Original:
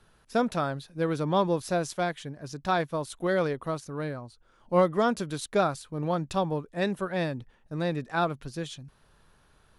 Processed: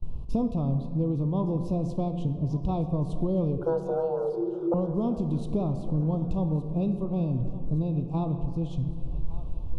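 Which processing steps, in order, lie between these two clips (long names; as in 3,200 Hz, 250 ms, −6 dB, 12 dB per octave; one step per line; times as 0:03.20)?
RIAA equalisation playback
noise gate with hold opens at −42 dBFS
Chebyshev band-stop filter 1,100–2,600 Hz, order 3
low-shelf EQ 360 Hz +11 dB
downward compressor 10 to 1, threshold −30 dBFS, peak gain reduction 22.5 dB
0:03.58–0:04.74: frequency shifter +330 Hz
feedback echo with a high-pass in the loop 1,165 ms, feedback 63%, high-pass 420 Hz, level −16 dB
on a send at −7 dB: convolution reverb RT60 2.1 s, pre-delay 3 ms
on the sum: level +5 dB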